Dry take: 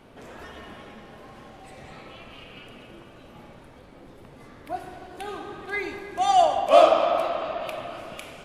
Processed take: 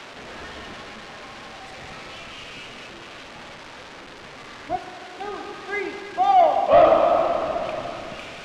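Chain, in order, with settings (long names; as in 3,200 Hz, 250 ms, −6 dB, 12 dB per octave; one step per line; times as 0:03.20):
spike at every zero crossing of −19 dBFS
0:04.76–0:06.87: high-pass filter 290 Hz 6 dB per octave
leveller curve on the samples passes 2
head-to-tape spacing loss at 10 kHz 38 dB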